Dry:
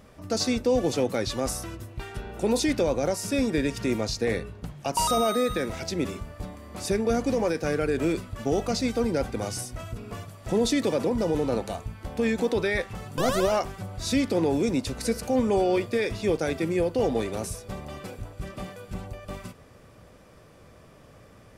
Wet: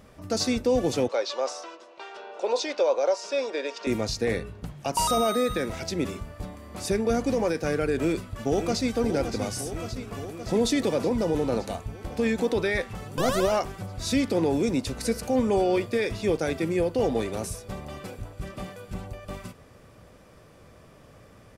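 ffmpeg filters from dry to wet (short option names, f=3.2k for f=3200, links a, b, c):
-filter_complex "[0:a]asettb=1/sr,asplit=3[a][b][c];[a]atrim=end=1.084[d];[b]atrim=start=1.08:end=3.87,asetpts=PTS-STARTPTS,afade=t=in:d=0.004:c=qsin,afade=t=out:st=2.786:d=0.004:c=qsin,highpass=f=430:w=0.5412,highpass=f=430:w=1.3066,equalizer=f=570:t=q:w=4:g=5,equalizer=f=990:t=q:w=4:g=5,equalizer=f=1.9k:t=q:w=4:g=-5,lowpass=f=6k:w=0.5412,lowpass=f=6k:w=1.3066[e];[c]atrim=start=3.866[f];[d][e]acrossfade=d=0.004:c1=hsin:c2=qsin[g];[g][f]acrossfade=d=0.004:c1=qsin:c2=hsin,asplit=2[h][i];[i]afade=t=in:st=7.95:d=0.01,afade=t=out:st=8.95:d=0.01,aecho=0:1:570|1140|1710|2280|2850|3420|3990|4560|5130|5700|6270|6840:0.354813|0.26611|0.199583|0.149687|0.112265|0.0841989|0.0631492|0.0473619|0.0355214|0.0266411|0.0199808|0.0149856[j];[h][j]amix=inputs=2:normalize=0"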